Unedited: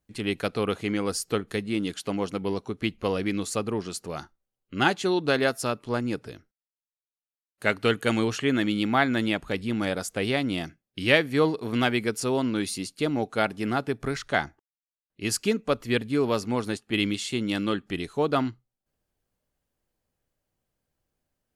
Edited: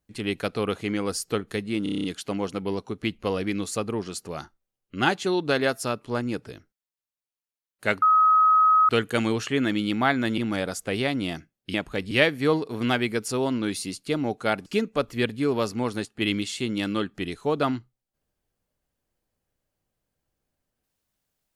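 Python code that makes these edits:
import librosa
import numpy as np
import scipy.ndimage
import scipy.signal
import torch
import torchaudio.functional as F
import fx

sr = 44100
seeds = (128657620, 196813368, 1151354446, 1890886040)

y = fx.edit(x, sr, fx.stutter(start_s=1.83, slice_s=0.03, count=8),
    fx.insert_tone(at_s=7.81, length_s=0.87, hz=1270.0, db=-14.5),
    fx.move(start_s=9.3, length_s=0.37, to_s=11.03),
    fx.cut(start_s=13.58, length_s=1.8), tone=tone)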